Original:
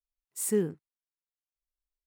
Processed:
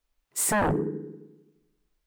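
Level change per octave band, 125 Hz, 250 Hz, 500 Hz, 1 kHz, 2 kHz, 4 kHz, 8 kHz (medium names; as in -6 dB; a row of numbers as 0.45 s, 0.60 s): +7.5 dB, +4.0 dB, +2.0 dB, +27.5 dB, +19.0 dB, +10.5 dB, +7.0 dB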